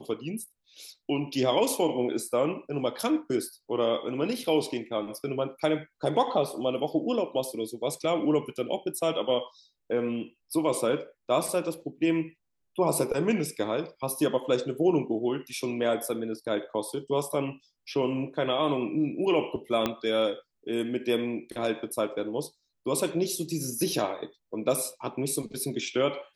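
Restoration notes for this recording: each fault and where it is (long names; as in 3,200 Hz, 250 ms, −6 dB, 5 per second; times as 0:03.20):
0:19.86: click −12 dBFS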